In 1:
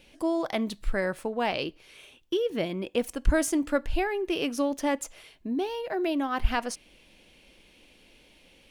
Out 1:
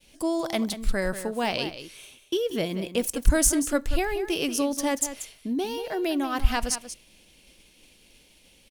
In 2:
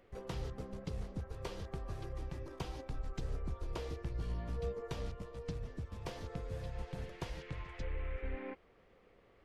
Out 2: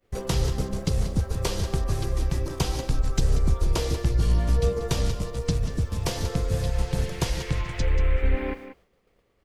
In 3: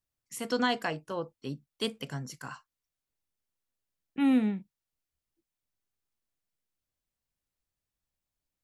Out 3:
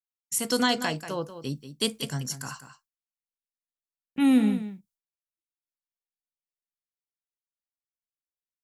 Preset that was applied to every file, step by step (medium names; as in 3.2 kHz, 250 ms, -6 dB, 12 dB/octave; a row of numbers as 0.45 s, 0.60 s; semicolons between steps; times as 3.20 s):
expander -53 dBFS; tone controls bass +4 dB, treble +12 dB; on a send: delay 186 ms -11.5 dB; on the sum: normalise loudness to -27 LUFS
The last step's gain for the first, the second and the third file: 0.0 dB, +13.0 dB, +2.5 dB